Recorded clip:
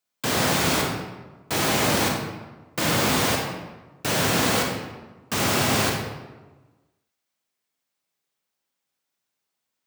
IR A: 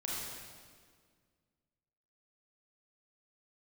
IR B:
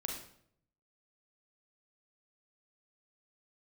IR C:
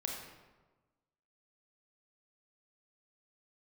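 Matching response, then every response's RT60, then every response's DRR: C; 1.8 s, 0.65 s, 1.3 s; -5.5 dB, 0.5 dB, -0.5 dB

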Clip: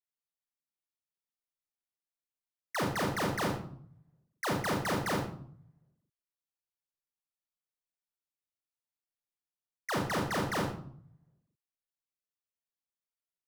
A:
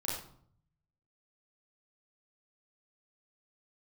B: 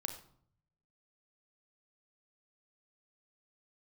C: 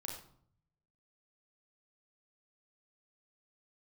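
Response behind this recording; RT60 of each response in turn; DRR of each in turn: C; 0.60 s, 0.60 s, 0.60 s; -6.0 dB, 5.5 dB, -1.0 dB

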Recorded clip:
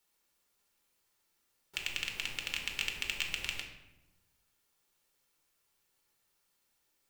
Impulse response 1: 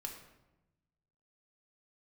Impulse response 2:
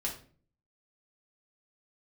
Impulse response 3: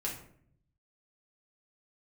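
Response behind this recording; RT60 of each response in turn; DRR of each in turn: 1; 1.0 s, 0.45 s, 0.60 s; 2.0 dB, -2.5 dB, -4.0 dB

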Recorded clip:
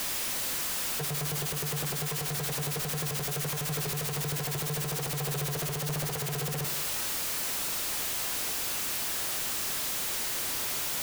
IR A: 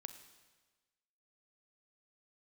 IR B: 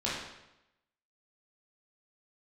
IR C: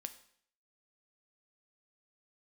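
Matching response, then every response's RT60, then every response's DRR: A; 1.3 s, 0.90 s, 0.60 s; 9.0 dB, -8.0 dB, 8.5 dB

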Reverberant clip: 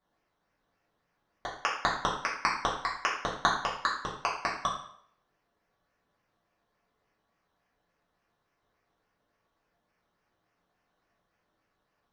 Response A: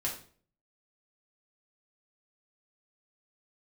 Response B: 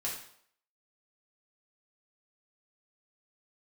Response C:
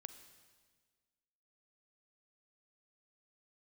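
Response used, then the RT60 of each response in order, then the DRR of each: B; 0.45 s, 0.65 s, 1.6 s; -4.0 dB, -5.5 dB, 10.0 dB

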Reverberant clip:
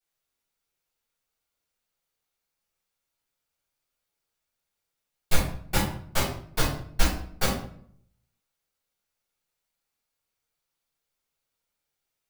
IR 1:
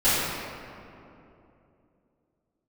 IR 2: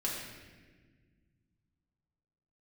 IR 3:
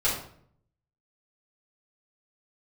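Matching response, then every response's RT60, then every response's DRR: 3; 2.9 s, 1.5 s, 0.60 s; -14.0 dB, -5.0 dB, -10.5 dB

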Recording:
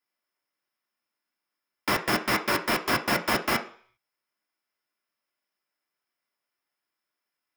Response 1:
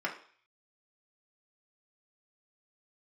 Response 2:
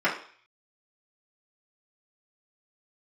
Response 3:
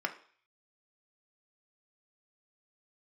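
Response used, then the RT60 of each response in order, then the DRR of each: 3; 0.45 s, 0.45 s, 0.45 s; -2.5 dB, -9.0 dB, 4.0 dB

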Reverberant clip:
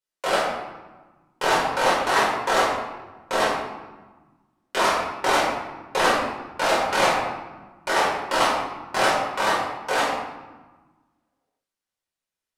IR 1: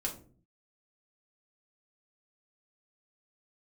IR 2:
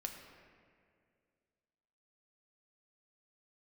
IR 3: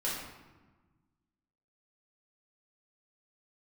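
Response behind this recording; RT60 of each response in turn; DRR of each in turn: 3; 0.45 s, 2.2 s, 1.3 s; -1.5 dB, 2.5 dB, -7.5 dB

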